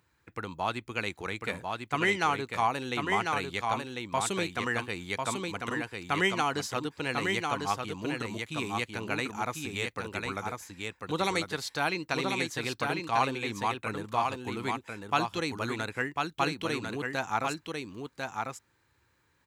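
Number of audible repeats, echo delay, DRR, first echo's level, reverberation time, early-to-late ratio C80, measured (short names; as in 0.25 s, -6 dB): 1, 1.047 s, none, -4.0 dB, none, none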